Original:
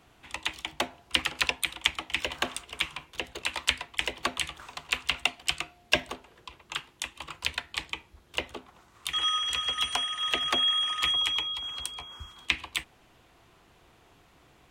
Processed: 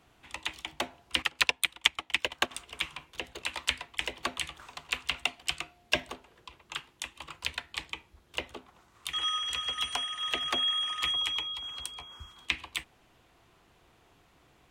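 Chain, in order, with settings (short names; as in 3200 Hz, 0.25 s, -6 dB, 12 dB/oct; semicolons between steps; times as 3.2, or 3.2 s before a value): 1.22–2.51 transient shaper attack +5 dB, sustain -11 dB; gain -3.5 dB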